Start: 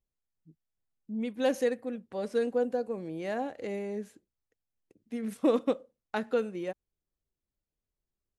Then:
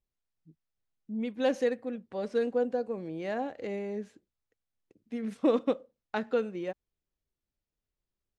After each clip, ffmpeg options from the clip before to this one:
-af "lowpass=5.8k"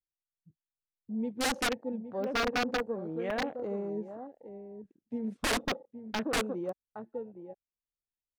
-filter_complex "[0:a]asplit=2[a][b];[b]adelay=816.3,volume=-10dB,highshelf=f=4k:g=-18.4[c];[a][c]amix=inputs=2:normalize=0,aeval=exprs='(mod(15*val(0)+1,2)-1)/15':c=same,afwtdn=0.00708"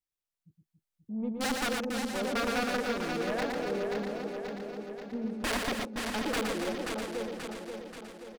-filter_complex "[0:a]asplit=2[a][b];[b]aecho=0:1:532|1064|1596|2128|2660|3192:0.473|0.246|0.128|0.0665|0.0346|0.018[c];[a][c]amix=inputs=2:normalize=0,asoftclip=type=tanh:threshold=-26dB,asplit=2[d][e];[e]aecho=0:1:116.6|279.9:0.631|0.398[f];[d][f]amix=inputs=2:normalize=0"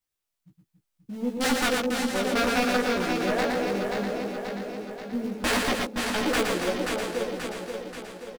-filter_complex "[0:a]asplit=2[a][b];[b]acrusher=bits=3:mode=log:mix=0:aa=0.000001,volume=-8.5dB[c];[a][c]amix=inputs=2:normalize=0,asplit=2[d][e];[e]adelay=16,volume=-3dB[f];[d][f]amix=inputs=2:normalize=0,volume=2dB"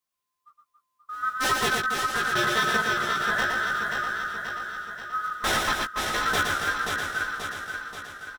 -af "afftfilt=real='real(if(lt(b,960),b+48*(1-2*mod(floor(b/48),2)),b),0)':imag='imag(if(lt(b,960),b+48*(1-2*mod(floor(b/48),2)),b),0)':win_size=2048:overlap=0.75"

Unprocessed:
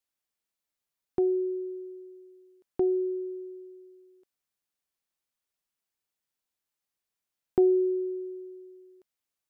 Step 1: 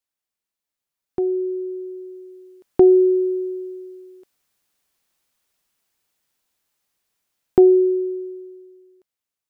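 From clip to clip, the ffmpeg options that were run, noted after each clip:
-af "dynaudnorm=f=310:g=13:m=15.5dB"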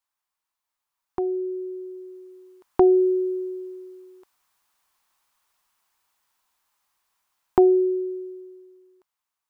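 -af "equalizer=f=125:t=o:w=1:g=-6,equalizer=f=250:t=o:w=1:g=-4,equalizer=f=500:t=o:w=1:g=-6,equalizer=f=1k:t=o:w=1:g=12"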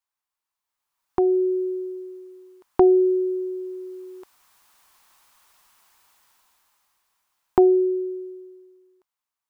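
-af "dynaudnorm=f=130:g=17:m=16dB,volume=-3.5dB"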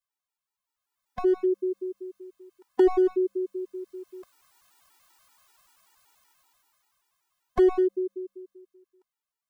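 -af "aeval=exprs='clip(val(0),-1,0.119)':c=same,afftfilt=real='re*gt(sin(2*PI*5.2*pts/sr)*(1-2*mod(floor(b*sr/1024/250),2)),0)':imag='im*gt(sin(2*PI*5.2*pts/sr)*(1-2*mod(floor(b*sr/1024/250),2)),0)':win_size=1024:overlap=0.75"

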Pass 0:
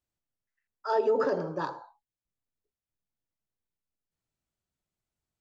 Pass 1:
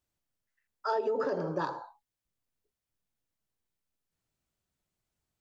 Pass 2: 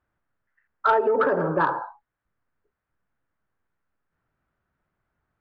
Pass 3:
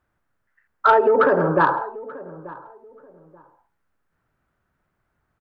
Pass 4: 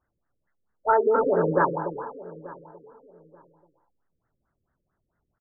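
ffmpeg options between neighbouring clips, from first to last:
-af "acompressor=threshold=-31dB:ratio=6,volume=3.5dB"
-af "lowpass=f=1.5k:t=q:w=2.4,asoftclip=type=tanh:threshold=-18dB,volume=8.5dB"
-filter_complex "[0:a]asplit=2[a][b];[b]adelay=884,lowpass=f=990:p=1,volume=-17.5dB,asplit=2[c][d];[d]adelay=884,lowpass=f=990:p=1,volume=0.27[e];[a][c][e]amix=inputs=3:normalize=0,volume=5dB"
-af "aecho=1:1:292:0.422,afftfilt=real='re*lt(b*sr/1024,530*pow(2200/530,0.5+0.5*sin(2*PI*4.5*pts/sr)))':imag='im*lt(b*sr/1024,530*pow(2200/530,0.5+0.5*sin(2*PI*4.5*pts/sr)))':win_size=1024:overlap=0.75,volume=-4.5dB"

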